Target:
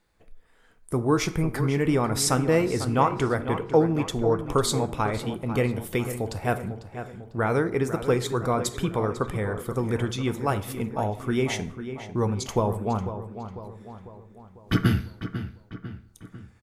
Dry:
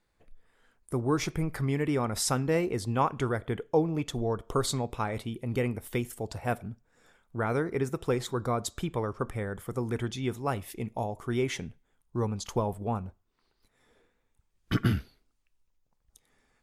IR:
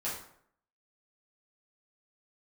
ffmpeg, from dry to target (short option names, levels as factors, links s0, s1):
-filter_complex "[0:a]asplit=2[s0][s1];[s1]adelay=498,lowpass=f=3100:p=1,volume=0.299,asplit=2[s2][s3];[s3]adelay=498,lowpass=f=3100:p=1,volume=0.52,asplit=2[s4][s5];[s5]adelay=498,lowpass=f=3100:p=1,volume=0.52,asplit=2[s6][s7];[s7]adelay=498,lowpass=f=3100:p=1,volume=0.52,asplit=2[s8][s9];[s9]adelay=498,lowpass=f=3100:p=1,volume=0.52,asplit=2[s10][s11];[s11]adelay=498,lowpass=f=3100:p=1,volume=0.52[s12];[s0][s2][s4][s6][s8][s10][s12]amix=inputs=7:normalize=0,asplit=2[s13][s14];[1:a]atrim=start_sample=2205[s15];[s14][s15]afir=irnorm=-1:irlink=0,volume=0.2[s16];[s13][s16]amix=inputs=2:normalize=0,volume=1.58"